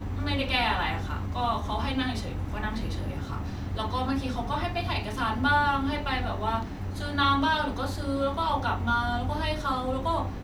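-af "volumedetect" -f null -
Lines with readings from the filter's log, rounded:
mean_volume: -28.1 dB
max_volume: -11.3 dB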